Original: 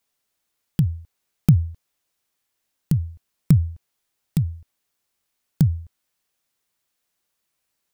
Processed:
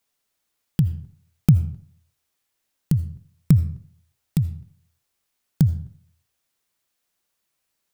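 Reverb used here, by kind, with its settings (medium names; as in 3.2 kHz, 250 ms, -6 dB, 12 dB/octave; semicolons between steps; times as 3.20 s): algorithmic reverb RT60 0.54 s, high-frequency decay 0.7×, pre-delay 40 ms, DRR 14 dB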